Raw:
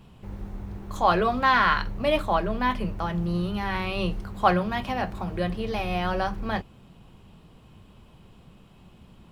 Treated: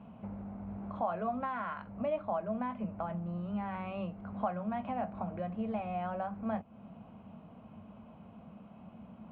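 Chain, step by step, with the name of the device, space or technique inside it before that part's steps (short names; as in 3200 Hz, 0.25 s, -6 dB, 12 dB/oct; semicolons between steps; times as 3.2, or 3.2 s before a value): bass amplifier (compressor 4:1, threshold -37 dBFS, peak gain reduction 19 dB; speaker cabinet 71–2200 Hz, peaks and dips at 77 Hz -9 dB, 130 Hz -9 dB, 220 Hz +9 dB, 370 Hz -10 dB, 660 Hz +9 dB, 1800 Hz -9 dB)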